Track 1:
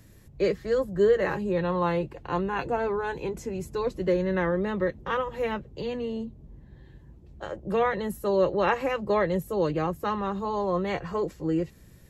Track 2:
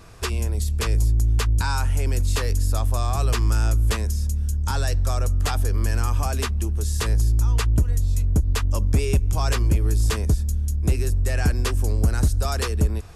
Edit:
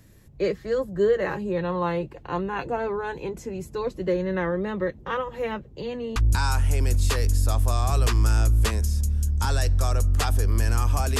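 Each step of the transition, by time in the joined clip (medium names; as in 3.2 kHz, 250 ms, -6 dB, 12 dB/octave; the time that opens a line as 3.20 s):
track 1
6.16 s: go over to track 2 from 1.42 s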